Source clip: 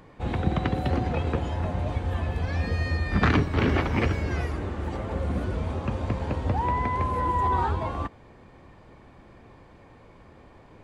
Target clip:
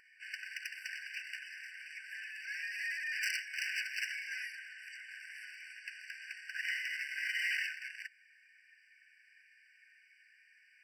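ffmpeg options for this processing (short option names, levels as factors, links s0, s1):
-af "aeval=exprs='0.0596*(abs(mod(val(0)/0.0596+3,4)-2)-1)':c=same,afftfilt=real='re*eq(mod(floor(b*sr/1024/1500),2),1)':imag='im*eq(mod(floor(b*sr/1024/1500),2),1)':win_size=1024:overlap=0.75"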